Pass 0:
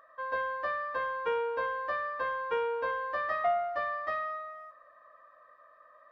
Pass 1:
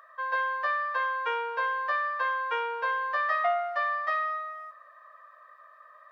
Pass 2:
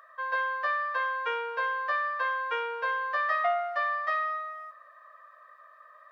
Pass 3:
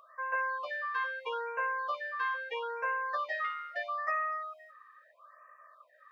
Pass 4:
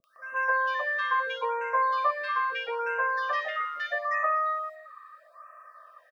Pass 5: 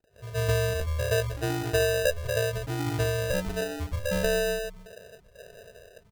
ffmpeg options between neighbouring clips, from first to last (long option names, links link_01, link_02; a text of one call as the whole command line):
ffmpeg -i in.wav -af "highpass=890,volume=6.5dB" out.wav
ffmpeg -i in.wav -af "equalizer=frequency=900:width=5.2:gain=-5" out.wav
ffmpeg -i in.wav -af "afftfilt=real='re*(1-between(b*sr/1024,690*pow(4100/690,0.5+0.5*sin(2*PI*0.77*pts/sr))/1.41,690*pow(4100/690,0.5+0.5*sin(2*PI*0.77*pts/sr))*1.41))':imag='im*(1-between(b*sr/1024,690*pow(4100/690,0.5+0.5*sin(2*PI*0.77*pts/sr))/1.41,690*pow(4100/690,0.5+0.5*sin(2*PI*0.77*pts/sr))*1.41))':win_size=1024:overlap=0.75,volume=-3dB" out.wav
ffmpeg -i in.wav -filter_complex "[0:a]afftfilt=real='re*pow(10,6/40*sin(2*PI*(1.1*log(max(b,1)*sr/1024/100)/log(2)-(0.35)*(pts-256)/sr)))':imag='im*pow(10,6/40*sin(2*PI*(1.1*log(max(b,1)*sr/1024/100)/log(2)-(0.35)*(pts-256)/sr)))':win_size=1024:overlap=0.75,acrossover=split=320|1900[link_01][link_02][link_03];[link_03]adelay=40[link_04];[link_02]adelay=160[link_05];[link_01][link_05][link_04]amix=inputs=3:normalize=0,volume=8dB" out.wav
ffmpeg -i in.wav -af "lowpass=frequency=3300:width_type=q:width=0.5098,lowpass=frequency=3300:width_type=q:width=0.6013,lowpass=frequency=3300:width_type=q:width=0.9,lowpass=frequency=3300:width_type=q:width=2.563,afreqshift=-3900,acrusher=samples=40:mix=1:aa=0.000001,volume=1dB" out.wav